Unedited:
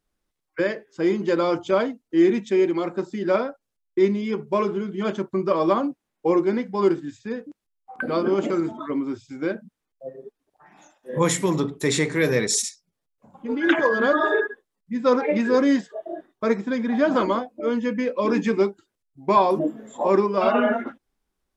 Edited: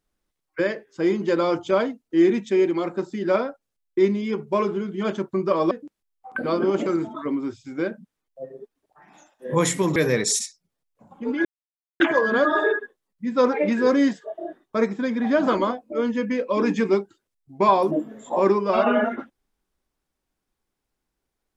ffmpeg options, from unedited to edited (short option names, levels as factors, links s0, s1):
-filter_complex "[0:a]asplit=4[s0][s1][s2][s3];[s0]atrim=end=5.712[s4];[s1]atrim=start=7.348:end=11.602[s5];[s2]atrim=start=12.188:end=13.68,asetpts=PTS-STARTPTS,afade=t=out:st=1.488:d=0.004:c=hsin,apad=pad_dur=0.55[s6];[s3]atrim=start=13.68,asetpts=PTS-STARTPTS,afade=t=in:d=0.004:c=hsin[s7];[s4][s5]acrossfade=d=0.004:c1=hsin:c2=hsin[s8];[s6][s7]concat=n=2:v=0:a=1[s9];[s8][s9]acrossfade=d=0.004:c1=hsin:c2=hsin"